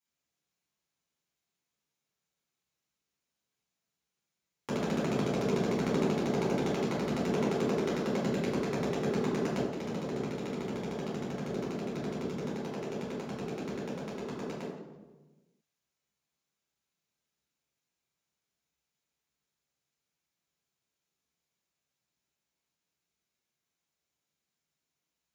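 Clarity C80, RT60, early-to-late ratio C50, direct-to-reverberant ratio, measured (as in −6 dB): 4.0 dB, 1.2 s, 1.0 dB, −7.5 dB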